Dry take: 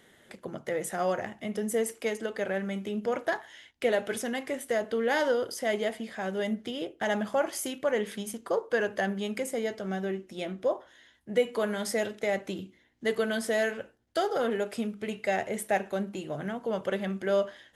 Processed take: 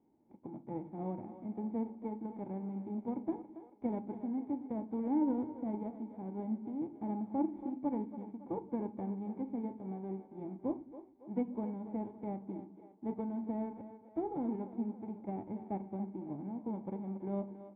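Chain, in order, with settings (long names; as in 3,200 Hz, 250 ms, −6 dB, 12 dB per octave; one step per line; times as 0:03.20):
spectral envelope flattened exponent 0.3
formant resonators in series u
echo with a time of its own for lows and highs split 320 Hz, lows 106 ms, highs 279 ms, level −12 dB
level +4 dB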